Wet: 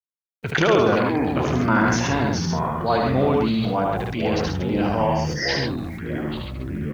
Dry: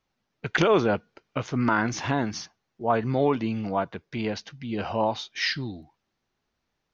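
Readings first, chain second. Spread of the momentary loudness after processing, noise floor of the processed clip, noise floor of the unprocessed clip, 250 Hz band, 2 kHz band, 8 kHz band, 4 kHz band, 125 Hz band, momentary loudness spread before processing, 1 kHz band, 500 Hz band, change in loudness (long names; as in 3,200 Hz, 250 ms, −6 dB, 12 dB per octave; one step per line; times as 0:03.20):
10 LU, below −85 dBFS, −80 dBFS, +6.5 dB, +5.0 dB, can't be measured, +4.5 dB, +8.0 dB, 13 LU, +5.5 dB, +5.0 dB, +5.0 dB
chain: gain on a spectral selection 0:04.87–0:05.48, 2,100–4,500 Hz −29 dB
in parallel at −3 dB: downward compressor 8 to 1, threshold −33 dBFS, peak gain reduction 16.5 dB
on the sum: delay with pitch and tempo change per echo 149 ms, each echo −6 semitones, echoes 3, each echo −6 dB
bit-depth reduction 10 bits, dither none
on a send: loudspeakers that aren't time-aligned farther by 26 metres −4 dB, 46 metres −5 dB
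on the sum: level that may fall only so fast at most 29 dB per second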